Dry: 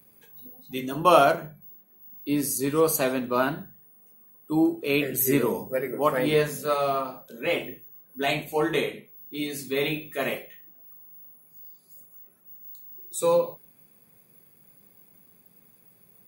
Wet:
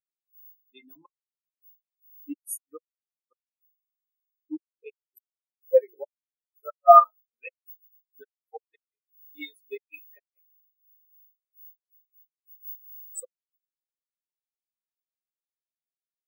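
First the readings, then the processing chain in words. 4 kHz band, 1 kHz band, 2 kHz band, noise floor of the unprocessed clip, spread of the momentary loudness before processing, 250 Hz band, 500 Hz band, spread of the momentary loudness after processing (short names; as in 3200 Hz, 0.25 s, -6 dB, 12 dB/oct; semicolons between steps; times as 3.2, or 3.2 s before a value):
under -20 dB, +3.5 dB, -18.0 dB, -59 dBFS, 21 LU, -18.0 dB, -3.0 dB, 24 LU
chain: flipped gate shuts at -15 dBFS, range -40 dB; tilt shelf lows -8.5 dB, about 630 Hz; spectral expander 4:1; gain +5 dB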